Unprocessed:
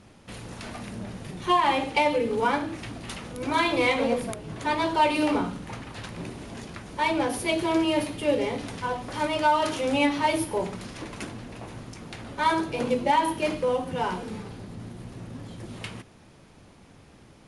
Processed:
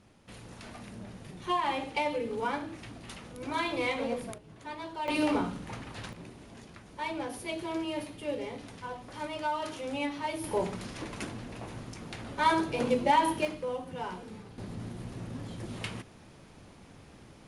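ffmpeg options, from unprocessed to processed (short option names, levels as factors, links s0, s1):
-af "asetnsamples=n=441:p=0,asendcmd='4.38 volume volume -15dB;5.08 volume volume -3.5dB;6.13 volume volume -10.5dB;10.44 volume volume -2dB;13.45 volume volume -9.5dB;14.58 volume volume -0.5dB',volume=0.398"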